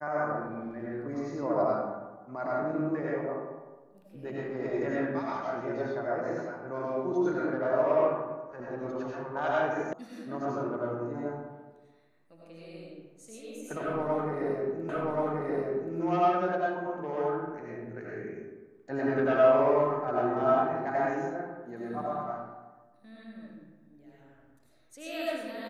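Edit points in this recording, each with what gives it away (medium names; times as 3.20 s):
9.93 s: sound stops dead
14.89 s: repeat of the last 1.08 s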